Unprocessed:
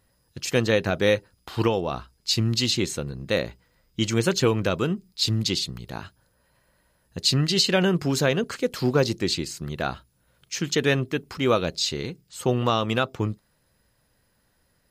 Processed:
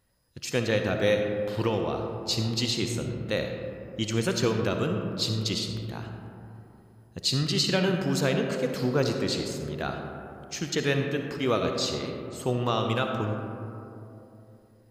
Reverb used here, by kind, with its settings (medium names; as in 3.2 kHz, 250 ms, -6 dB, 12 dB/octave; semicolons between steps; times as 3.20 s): algorithmic reverb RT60 3 s, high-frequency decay 0.3×, pre-delay 20 ms, DRR 3.5 dB; trim -5 dB